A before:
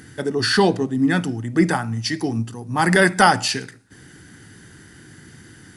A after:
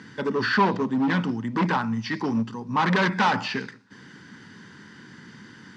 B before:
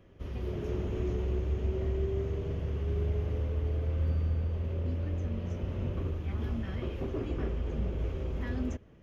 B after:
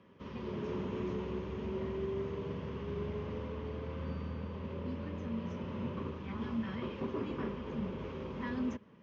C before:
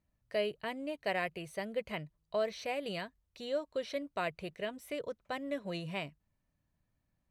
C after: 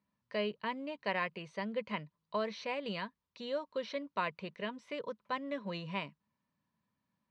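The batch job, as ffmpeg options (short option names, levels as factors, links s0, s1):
-filter_complex "[0:a]acrossover=split=3100[s0][s1];[s1]acompressor=threshold=0.00891:ratio=4:attack=1:release=60[s2];[s0][s2]amix=inputs=2:normalize=0,volume=8.91,asoftclip=hard,volume=0.112,highpass=170,equalizer=f=210:t=q:w=4:g=7,equalizer=f=330:t=q:w=4:g=-5,equalizer=f=700:t=q:w=4:g=-8,equalizer=f=1000:t=q:w=4:g=10,lowpass=f=5500:w=0.5412,lowpass=f=5500:w=1.3066"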